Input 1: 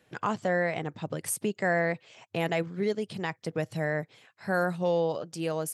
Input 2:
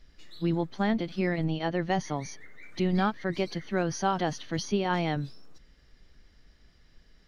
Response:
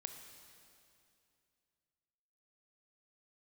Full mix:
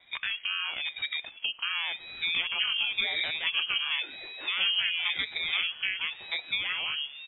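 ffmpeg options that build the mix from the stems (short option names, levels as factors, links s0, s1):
-filter_complex "[0:a]lowshelf=f=230:g=12,acompressor=threshold=0.0178:ratio=3,volume=1.41,asplit=2[s0][s1];[s1]volume=0.501[s2];[1:a]acompressor=threshold=0.0316:ratio=2.5,adelay=1800,volume=1.26,asplit=2[s3][s4];[s4]volume=0.422[s5];[2:a]atrim=start_sample=2205[s6];[s2][s5]amix=inputs=2:normalize=0[s7];[s7][s6]afir=irnorm=-1:irlink=0[s8];[s0][s3][s8]amix=inputs=3:normalize=0,lowpass=f=2700:t=q:w=0.5098,lowpass=f=2700:t=q:w=0.6013,lowpass=f=2700:t=q:w=0.9,lowpass=f=2700:t=q:w=2.563,afreqshift=-3200,aeval=exprs='val(0)*sin(2*PI*420*n/s+420*0.7/0.94*sin(2*PI*0.94*n/s))':c=same"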